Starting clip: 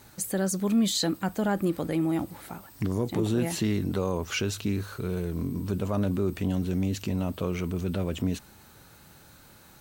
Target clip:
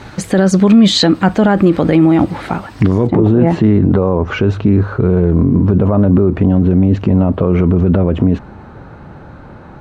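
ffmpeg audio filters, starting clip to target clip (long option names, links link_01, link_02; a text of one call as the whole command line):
ffmpeg -i in.wav -af "asetnsamples=nb_out_samples=441:pad=0,asendcmd='3.07 lowpass f 1100',lowpass=3200,alimiter=level_in=22.5dB:limit=-1dB:release=50:level=0:latency=1,volume=-1dB" out.wav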